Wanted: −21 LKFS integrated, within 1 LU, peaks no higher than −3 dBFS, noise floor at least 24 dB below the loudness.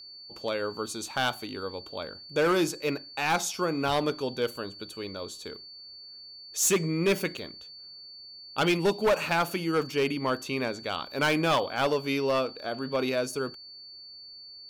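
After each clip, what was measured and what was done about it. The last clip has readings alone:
share of clipped samples 1.0%; peaks flattened at −19.0 dBFS; interfering tone 4,500 Hz; level of the tone −44 dBFS; integrated loudness −28.5 LKFS; sample peak −19.0 dBFS; target loudness −21.0 LKFS
→ clipped peaks rebuilt −19 dBFS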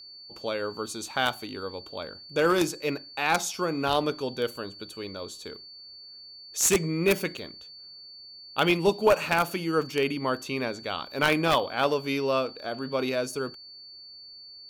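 share of clipped samples 0.0%; interfering tone 4,500 Hz; level of the tone −44 dBFS
→ notch filter 4,500 Hz, Q 30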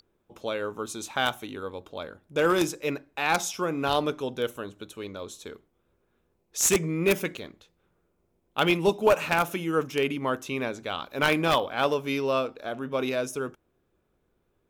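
interfering tone none found; integrated loudness −27.0 LKFS; sample peak −9.5 dBFS; target loudness −21.0 LKFS
→ level +6 dB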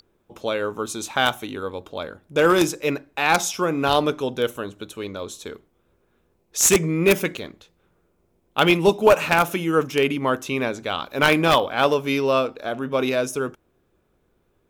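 integrated loudness −21.0 LKFS; sample peak −3.5 dBFS; background noise floor −67 dBFS

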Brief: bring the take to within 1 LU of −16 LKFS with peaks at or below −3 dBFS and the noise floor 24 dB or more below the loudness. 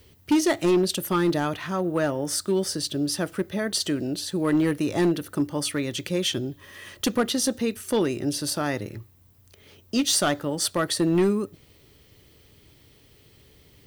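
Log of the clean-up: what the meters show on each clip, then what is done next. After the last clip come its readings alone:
share of clipped samples 1.1%; peaks flattened at −15.5 dBFS; integrated loudness −25.0 LKFS; sample peak −15.5 dBFS; target loudness −16.0 LKFS
→ clipped peaks rebuilt −15.5 dBFS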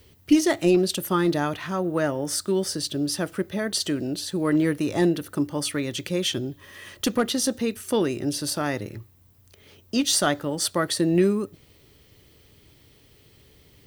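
share of clipped samples 0.0%; integrated loudness −24.5 LKFS; sample peak −7.5 dBFS; target loudness −16.0 LKFS
→ level +8.5 dB
brickwall limiter −3 dBFS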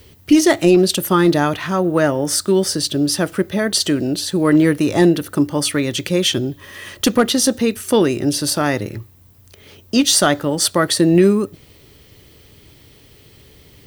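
integrated loudness −16.5 LKFS; sample peak −3.0 dBFS; background noise floor −48 dBFS

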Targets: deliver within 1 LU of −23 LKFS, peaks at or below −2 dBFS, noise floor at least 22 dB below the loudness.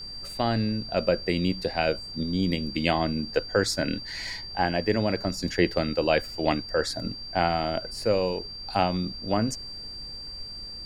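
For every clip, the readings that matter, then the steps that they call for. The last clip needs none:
interfering tone 4,700 Hz; level of the tone −37 dBFS; background noise floor −39 dBFS; target noise floor −50 dBFS; integrated loudness −27.5 LKFS; sample peak −7.5 dBFS; target loudness −23.0 LKFS
→ notch filter 4,700 Hz, Q 30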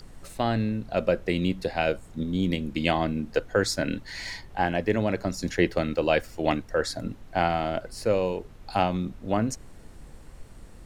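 interfering tone none found; background noise floor −47 dBFS; target noise floor −50 dBFS
→ noise reduction from a noise print 6 dB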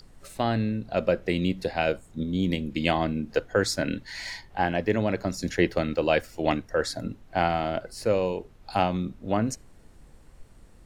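background noise floor −53 dBFS; integrated loudness −27.5 LKFS; sample peak −7.5 dBFS; target loudness −23.0 LKFS
→ level +4.5 dB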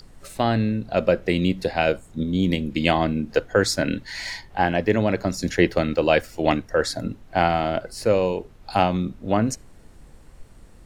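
integrated loudness −23.0 LKFS; sample peak −3.0 dBFS; background noise floor −49 dBFS

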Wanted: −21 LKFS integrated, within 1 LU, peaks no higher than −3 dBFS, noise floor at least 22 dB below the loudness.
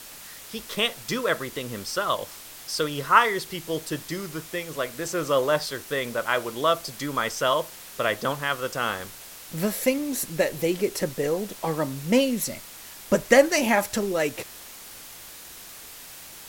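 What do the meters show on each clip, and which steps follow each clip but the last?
background noise floor −43 dBFS; target noise floor −48 dBFS; integrated loudness −25.5 LKFS; sample peak −3.0 dBFS; target loudness −21.0 LKFS
→ noise reduction from a noise print 6 dB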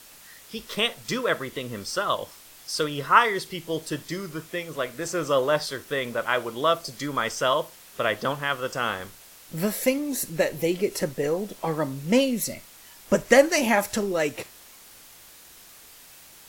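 background noise floor −49 dBFS; integrated loudness −25.5 LKFS; sample peak −3.0 dBFS; target loudness −21.0 LKFS
→ level +4.5 dB
brickwall limiter −3 dBFS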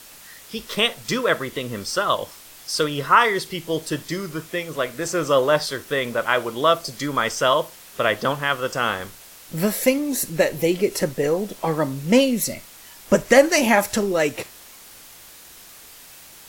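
integrated loudness −21.5 LKFS; sample peak −3.0 dBFS; background noise floor −45 dBFS

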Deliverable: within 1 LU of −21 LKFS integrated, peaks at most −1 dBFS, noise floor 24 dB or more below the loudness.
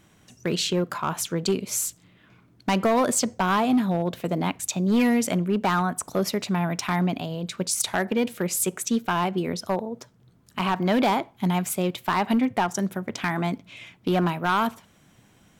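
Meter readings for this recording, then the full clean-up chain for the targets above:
share of clipped samples 1.2%; peaks flattened at −16.0 dBFS; integrated loudness −25.0 LKFS; sample peak −16.0 dBFS; target loudness −21.0 LKFS
→ clipped peaks rebuilt −16 dBFS
level +4 dB

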